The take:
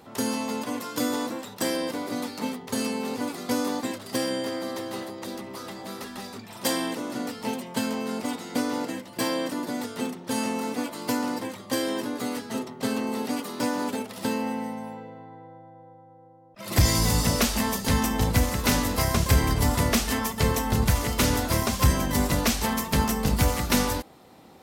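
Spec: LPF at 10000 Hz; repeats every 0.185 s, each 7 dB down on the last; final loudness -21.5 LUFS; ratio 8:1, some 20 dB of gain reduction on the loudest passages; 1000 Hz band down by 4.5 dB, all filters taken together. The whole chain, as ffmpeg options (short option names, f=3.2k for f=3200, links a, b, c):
-af "lowpass=10k,equalizer=f=1k:t=o:g=-5.5,acompressor=threshold=-37dB:ratio=8,aecho=1:1:185|370|555|740|925:0.447|0.201|0.0905|0.0407|0.0183,volume=18.5dB"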